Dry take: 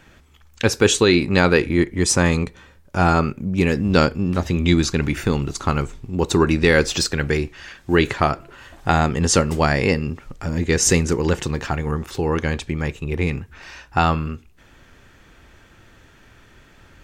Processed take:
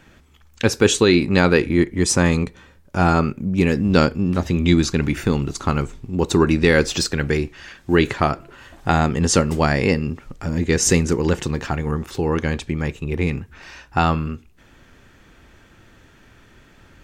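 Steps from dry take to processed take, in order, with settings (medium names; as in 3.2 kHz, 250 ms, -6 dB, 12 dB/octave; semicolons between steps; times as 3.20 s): peaking EQ 230 Hz +3 dB 1.5 oct; trim -1 dB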